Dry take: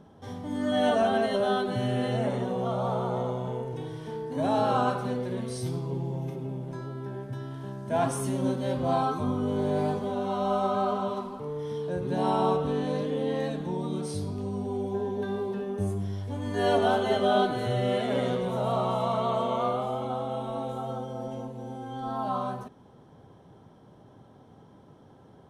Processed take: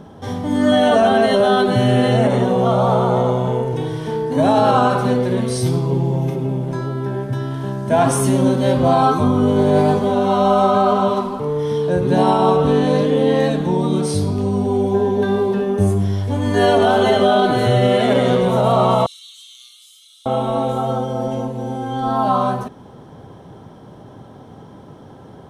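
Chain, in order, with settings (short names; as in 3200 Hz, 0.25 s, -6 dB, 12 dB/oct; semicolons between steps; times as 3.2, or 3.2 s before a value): 19.06–20.26 inverse Chebyshev high-pass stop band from 940 Hz, stop band 70 dB; maximiser +18 dB; gain -4.5 dB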